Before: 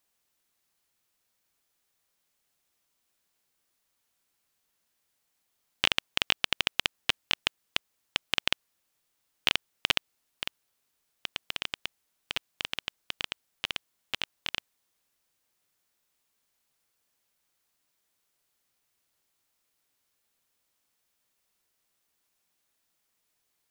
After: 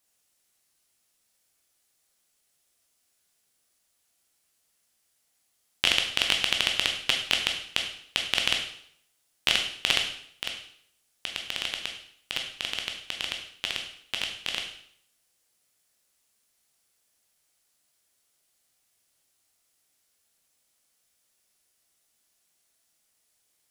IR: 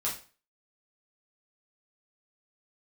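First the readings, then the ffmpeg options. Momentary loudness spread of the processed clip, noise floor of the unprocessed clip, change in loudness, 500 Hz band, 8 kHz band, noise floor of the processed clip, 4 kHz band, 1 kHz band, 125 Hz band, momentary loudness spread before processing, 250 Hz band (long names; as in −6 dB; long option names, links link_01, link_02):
11 LU, −78 dBFS, +3.5 dB, +3.0 dB, +7.5 dB, −73 dBFS, +4.5 dB, +1.0 dB, +1.5 dB, 11 LU, +2.0 dB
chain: -filter_complex "[0:a]asplit=2[link_01][link_02];[link_02]equalizer=frequency=1000:width_type=o:width=0.37:gain=-6.5[link_03];[1:a]atrim=start_sample=2205,asetrate=24255,aresample=44100,highshelf=frequency=4500:gain=10[link_04];[link_03][link_04]afir=irnorm=-1:irlink=0,volume=-8dB[link_05];[link_01][link_05]amix=inputs=2:normalize=0,volume=-3dB"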